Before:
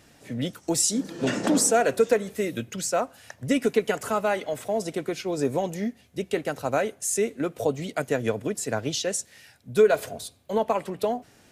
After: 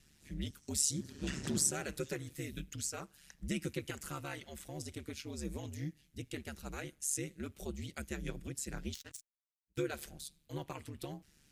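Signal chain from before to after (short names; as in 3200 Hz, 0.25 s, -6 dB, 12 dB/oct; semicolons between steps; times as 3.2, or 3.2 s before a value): 8.94–9.78 power-law curve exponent 3; ring modulator 72 Hz; passive tone stack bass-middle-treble 6-0-2; gain +9 dB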